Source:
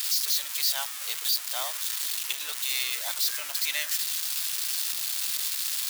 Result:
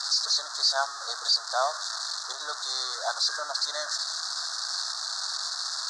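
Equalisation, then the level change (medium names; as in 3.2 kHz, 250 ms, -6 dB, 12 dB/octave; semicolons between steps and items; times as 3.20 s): elliptic band-stop 1.5–4.3 kHz, stop band 60 dB; distance through air 87 m; cabinet simulation 440–7300 Hz, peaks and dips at 670 Hz +7 dB, 1.2 kHz +5 dB, 1.8 kHz +6 dB, 3.6 kHz +4 dB; +8.0 dB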